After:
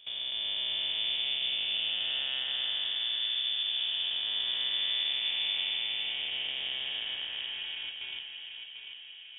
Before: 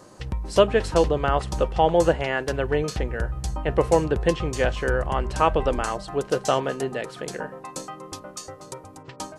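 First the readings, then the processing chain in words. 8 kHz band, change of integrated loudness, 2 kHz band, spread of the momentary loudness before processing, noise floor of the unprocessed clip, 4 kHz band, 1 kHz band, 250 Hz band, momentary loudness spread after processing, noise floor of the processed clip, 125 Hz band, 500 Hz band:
below −40 dB, −6.0 dB, −6.5 dB, 17 LU, −46 dBFS, +11.0 dB, −27.5 dB, below −30 dB, 10 LU, −47 dBFS, below −35 dB, −35.0 dB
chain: spectrum smeared in time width 760 ms
noise gate with hold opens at −30 dBFS
low-shelf EQ 180 Hz +4 dB
downward compressor 2 to 1, threshold −43 dBFS, peak gain reduction 12 dB
tape delay 743 ms, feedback 64%, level −5.5 dB, low-pass 2,100 Hz
voice inversion scrambler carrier 3,500 Hz
level +2.5 dB

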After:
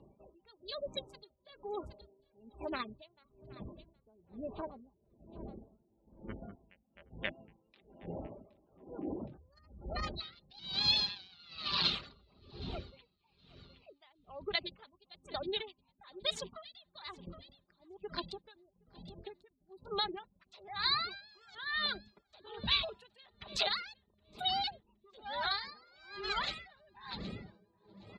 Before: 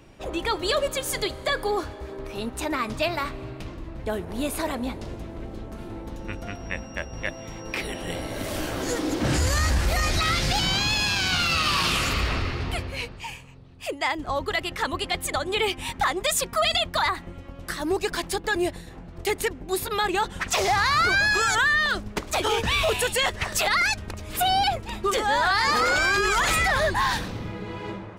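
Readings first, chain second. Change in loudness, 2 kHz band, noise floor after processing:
−12.5 dB, −19.5 dB, −76 dBFS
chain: adaptive Wiener filter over 25 samples
high-pass filter 57 Hz
gate on every frequency bin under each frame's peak −25 dB strong
reverb reduction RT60 0.63 s
comb filter 5 ms, depth 40%
downward compressor, threshold −27 dBFS, peak gain reduction 9 dB
pitch vibrato 6.4 Hz 26 cents
low-pass with resonance 4,000 Hz, resonance Q 6
on a send: repeating echo 768 ms, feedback 41%, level −19 dB
on the sum: tremolo with a sine in dB 1.1 Hz, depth 30 dB
level −6 dB

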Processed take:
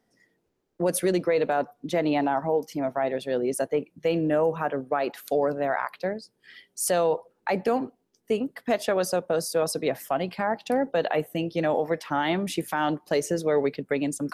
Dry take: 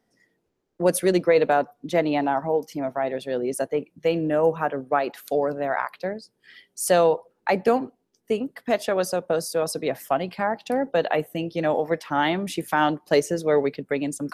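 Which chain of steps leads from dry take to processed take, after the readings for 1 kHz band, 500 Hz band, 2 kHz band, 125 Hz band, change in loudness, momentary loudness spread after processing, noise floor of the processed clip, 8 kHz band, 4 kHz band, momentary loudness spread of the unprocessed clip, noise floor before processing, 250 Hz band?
−3.0 dB, −2.5 dB, −3.0 dB, −1.5 dB, −2.5 dB, 5 LU, −73 dBFS, −0.5 dB, −2.0 dB, 8 LU, −73 dBFS, −1.5 dB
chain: brickwall limiter −14.5 dBFS, peak gain reduction 6.5 dB

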